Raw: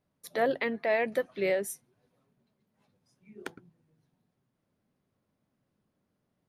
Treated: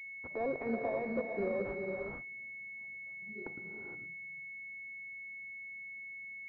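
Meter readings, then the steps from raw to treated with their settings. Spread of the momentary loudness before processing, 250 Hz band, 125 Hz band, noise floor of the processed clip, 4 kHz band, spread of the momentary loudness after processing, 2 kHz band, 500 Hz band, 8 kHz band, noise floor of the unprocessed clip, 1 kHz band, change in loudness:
17 LU, −1.5 dB, +0.5 dB, −47 dBFS, below −25 dB, 9 LU, −1.5 dB, −6.0 dB, below −30 dB, −80 dBFS, −7.0 dB, −9.5 dB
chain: brickwall limiter −27 dBFS, peak gain reduction 11.5 dB
reverb whose tail is shaped and stops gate 490 ms rising, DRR 2 dB
switching amplifier with a slow clock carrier 2,200 Hz

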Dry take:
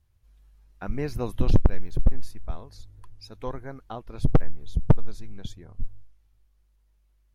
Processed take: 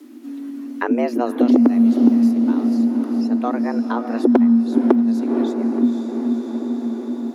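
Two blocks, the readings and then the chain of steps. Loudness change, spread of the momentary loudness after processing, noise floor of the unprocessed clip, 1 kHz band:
+11.0 dB, 11 LU, −64 dBFS, +12.5 dB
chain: feedback delay with all-pass diffusion 504 ms, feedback 55%, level −9 dB
frequency shifter +230 Hz
multiband upward and downward compressor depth 70%
level +4 dB

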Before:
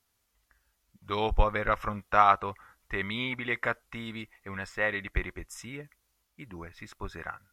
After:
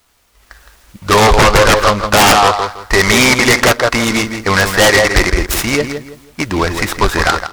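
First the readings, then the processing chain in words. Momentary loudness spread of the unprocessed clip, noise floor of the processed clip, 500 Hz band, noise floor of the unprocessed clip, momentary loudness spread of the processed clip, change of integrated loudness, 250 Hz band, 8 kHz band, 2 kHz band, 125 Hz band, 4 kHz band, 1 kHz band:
20 LU, −51 dBFS, +21.0 dB, −76 dBFS, 9 LU, +18.5 dB, +22.5 dB, +35.0 dB, +20.5 dB, +20.5 dB, +27.0 dB, +16.5 dB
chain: loose part that buzzes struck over −30 dBFS, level −25 dBFS
in parallel at 0 dB: downward compressor, threshold −37 dBFS, peak gain reduction 20 dB
on the sum: parametric band 150 Hz −8 dB 1.3 octaves
on a send: feedback echo with a low-pass in the loop 164 ms, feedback 30%, low-pass 1,600 Hz, level −7 dB
on the sum: automatic gain control gain up to 10.5 dB
dynamic equaliser 670 Hz, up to +6 dB, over −32 dBFS, Q 0.96
sine wavefolder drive 12 dB, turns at −1.5 dBFS
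short delay modulated by noise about 2,800 Hz, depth 0.044 ms
level −2.5 dB

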